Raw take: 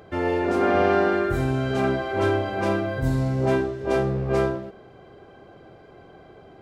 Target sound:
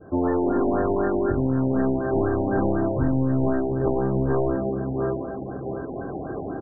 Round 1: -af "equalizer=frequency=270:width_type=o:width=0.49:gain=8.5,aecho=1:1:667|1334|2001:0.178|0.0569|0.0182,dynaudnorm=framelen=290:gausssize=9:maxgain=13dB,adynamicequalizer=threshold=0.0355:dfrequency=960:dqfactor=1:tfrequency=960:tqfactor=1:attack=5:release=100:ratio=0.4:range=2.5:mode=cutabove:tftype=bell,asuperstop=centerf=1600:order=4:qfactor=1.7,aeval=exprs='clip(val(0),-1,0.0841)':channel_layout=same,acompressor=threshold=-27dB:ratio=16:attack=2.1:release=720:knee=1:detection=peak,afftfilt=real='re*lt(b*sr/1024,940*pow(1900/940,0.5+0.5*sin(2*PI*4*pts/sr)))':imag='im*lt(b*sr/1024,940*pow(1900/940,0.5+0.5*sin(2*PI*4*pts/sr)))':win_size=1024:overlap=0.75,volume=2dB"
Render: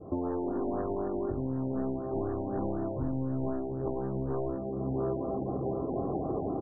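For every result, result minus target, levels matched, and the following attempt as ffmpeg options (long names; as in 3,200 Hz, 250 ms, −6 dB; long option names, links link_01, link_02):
2,000 Hz band −12.0 dB; downward compressor: peak gain reduction +10 dB
-af "equalizer=frequency=270:width_type=o:width=0.49:gain=8.5,aecho=1:1:667|1334|2001:0.178|0.0569|0.0182,dynaudnorm=framelen=290:gausssize=9:maxgain=13dB,adynamicequalizer=threshold=0.0355:dfrequency=960:dqfactor=1:tfrequency=960:tqfactor=1:attack=5:release=100:ratio=0.4:range=2.5:mode=cutabove:tftype=bell,asuperstop=centerf=5200:order=4:qfactor=1.7,aeval=exprs='clip(val(0),-1,0.0841)':channel_layout=same,acompressor=threshold=-27dB:ratio=16:attack=2.1:release=720:knee=1:detection=peak,afftfilt=real='re*lt(b*sr/1024,940*pow(1900/940,0.5+0.5*sin(2*PI*4*pts/sr)))':imag='im*lt(b*sr/1024,940*pow(1900/940,0.5+0.5*sin(2*PI*4*pts/sr)))':win_size=1024:overlap=0.75,volume=2dB"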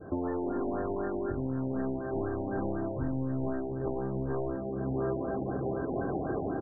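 downward compressor: peak gain reduction +10.5 dB
-af "equalizer=frequency=270:width_type=o:width=0.49:gain=8.5,aecho=1:1:667|1334|2001:0.178|0.0569|0.0182,dynaudnorm=framelen=290:gausssize=9:maxgain=13dB,adynamicequalizer=threshold=0.0355:dfrequency=960:dqfactor=1:tfrequency=960:tqfactor=1:attack=5:release=100:ratio=0.4:range=2.5:mode=cutabove:tftype=bell,asuperstop=centerf=5200:order=4:qfactor=1.7,aeval=exprs='clip(val(0),-1,0.0841)':channel_layout=same,acompressor=threshold=-16dB:ratio=16:attack=2.1:release=720:knee=1:detection=peak,afftfilt=real='re*lt(b*sr/1024,940*pow(1900/940,0.5+0.5*sin(2*PI*4*pts/sr)))':imag='im*lt(b*sr/1024,940*pow(1900/940,0.5+0.5*sin(2*PI*4*pts/sr)))':win_size=1024:overlap=0.75,volume=2dB"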